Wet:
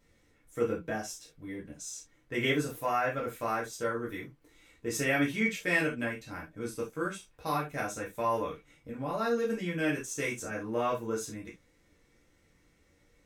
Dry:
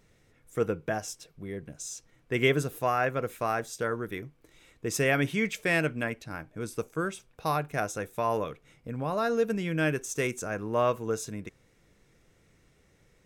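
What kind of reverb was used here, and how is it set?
non-linear reverb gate 0.1 s falling, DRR -4.5 dB; gain -8 dB

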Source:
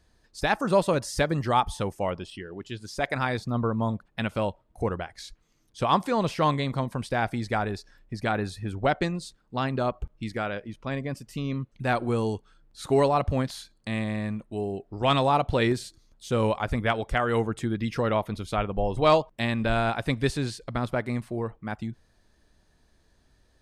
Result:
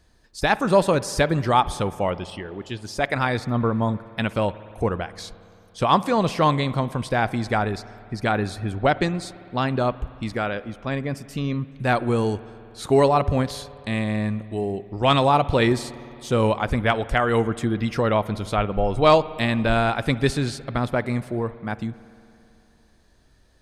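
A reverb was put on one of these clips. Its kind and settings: spring tank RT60 2.8 s, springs 56 ms, chirp 60 ms, DRR 16.5 dB; gain +4.5 dB

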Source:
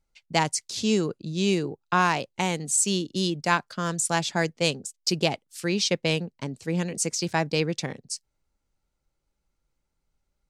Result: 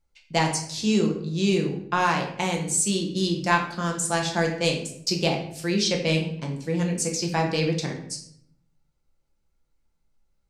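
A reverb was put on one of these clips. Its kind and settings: shoebox room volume 130 m³, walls mixed, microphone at 0.8 m; gain -2 dB

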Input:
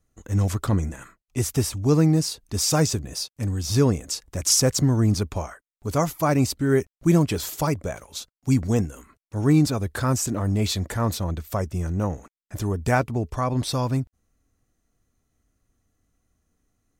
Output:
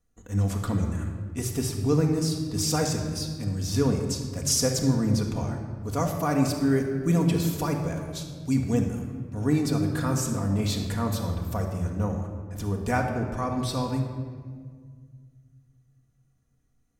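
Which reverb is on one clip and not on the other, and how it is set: shoebox room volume 2600 m³, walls mixed, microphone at 1.8 m; gain -6 dB

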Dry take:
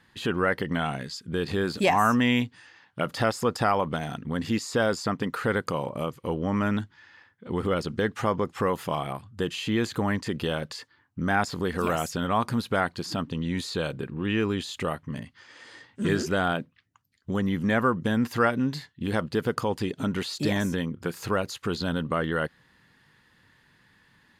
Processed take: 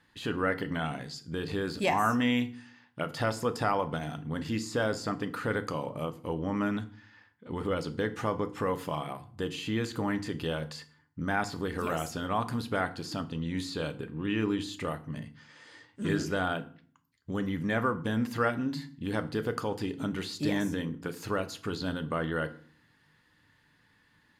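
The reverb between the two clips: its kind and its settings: FDN reverb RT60 0.47 s, low-frequency decay 1.55×, high-frequency decay 0.8×, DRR 8.5 dB; gain -5.5 dB

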